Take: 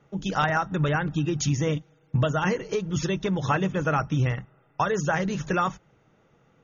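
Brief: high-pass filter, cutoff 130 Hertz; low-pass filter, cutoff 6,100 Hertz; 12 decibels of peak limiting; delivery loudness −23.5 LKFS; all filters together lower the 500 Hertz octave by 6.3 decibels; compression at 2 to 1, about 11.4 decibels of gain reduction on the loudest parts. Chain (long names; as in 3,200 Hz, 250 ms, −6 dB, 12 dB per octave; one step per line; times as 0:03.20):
high-pass filter 130 Hz
low-pass filter 6,100 Hz
parametric band 500 Hz −8 dB
downward compressor 2 to 1, threshold −43 dBFS
level +21 dB
brickwall limiter −14.5 dBFS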